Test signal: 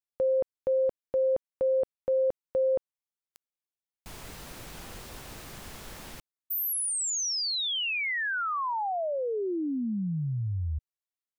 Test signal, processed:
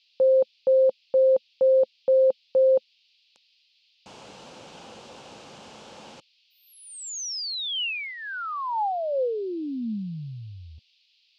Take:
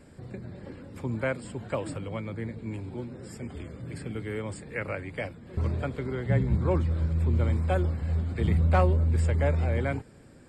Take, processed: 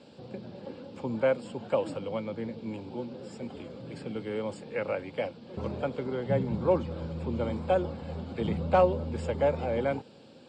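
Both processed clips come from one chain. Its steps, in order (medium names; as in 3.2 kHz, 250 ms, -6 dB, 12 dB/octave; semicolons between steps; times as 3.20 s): cabinet simulation 160–6900 Hz, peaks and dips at 220 Hz +4 dB, 520 Hz +8 dB, 840 Hz +7 dB, 1.9 kHz -8 dB, 2.9 kHz +5 dB; band noise 2.5–4.9 kHz -64 dBFS; trim -1.5 dB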